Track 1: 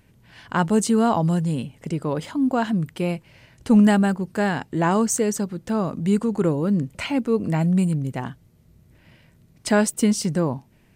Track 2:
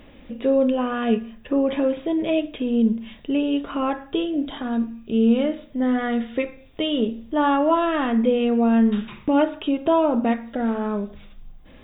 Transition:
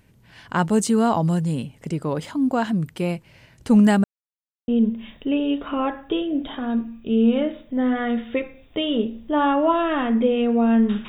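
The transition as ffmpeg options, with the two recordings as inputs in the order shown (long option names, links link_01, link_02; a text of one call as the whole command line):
ffmpeg -i cue0.wav -i cue1.wav -filter_complex "[0:a]apad=whole_dur=11.08,atrim=end=11.08,asplit=2[link_01][link_02];[link_01]atrim=end=4.04,asetpts=PTS-STARTPTS,afade=type=out:start_time=4.036:duration=0.004:curve=hsin[link_03];[link_02]atrim=start=4.04:end=4.68,asetpts=PTS-STARTPTS,volume=0[link_04];[1:a]atrim=start=2.71:end=9.11,asetpts=PTS-STARTPTS,afade=type=in:duration=0.004:curve=hsin[link_05];[link_03][link_04][link_05]concat=n=3:v=0:a=1" out.wav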